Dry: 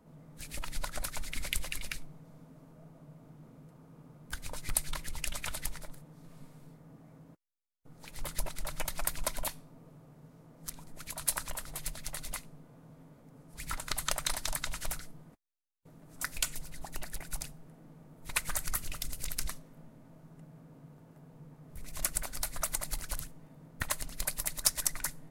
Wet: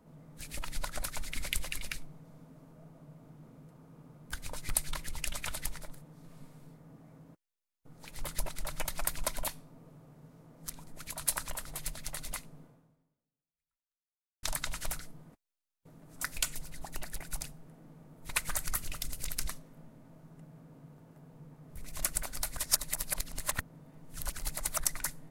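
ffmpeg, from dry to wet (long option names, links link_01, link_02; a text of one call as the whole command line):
ffmpeg -i in.wav -filter_complex "[0:a]asplit=4[link_01][link_02][link_03][link_04];[link_01]atrim=end=14.43,asetpts=PTS-STARTPTS,afade=type=out:start_time=12.64:duration=1.79:curve=exp[link_05];[link_02]atrim=start=14.43:end=22.572,asetpts=PTS-STARTPTS,afade=type=in:duration=0.004:curve=hsin[link_06];[link_03]atrim=start=22.568:end=24.842,asetpts=PTS-STARTPTS,areverse[link_07];[link_04]atrim=start=24.838[link_08];[link_05][link_06]concat=n=2:v=0:a=1[link_09];[link_09][link_07]acrossfade=duration=0.004:curve1=hsin:curve2=hsin[link_10];[link_10][link_08]acrossfade=duration=0.004:curve1=hsin:curve2=hsin" out.wav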